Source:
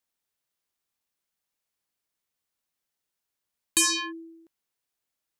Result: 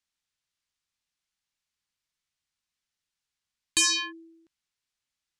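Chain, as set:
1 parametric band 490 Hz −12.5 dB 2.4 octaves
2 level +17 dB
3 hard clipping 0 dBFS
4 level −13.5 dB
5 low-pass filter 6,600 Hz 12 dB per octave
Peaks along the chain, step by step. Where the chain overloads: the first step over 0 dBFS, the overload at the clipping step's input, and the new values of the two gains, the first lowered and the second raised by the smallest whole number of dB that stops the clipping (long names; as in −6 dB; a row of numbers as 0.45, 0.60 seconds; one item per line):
−13.5, +3.5, 0.0, −13.5, −13.0 dBFS
step 2, 3.5 dB
step 2 +13 dB, step 4 −9.5 dB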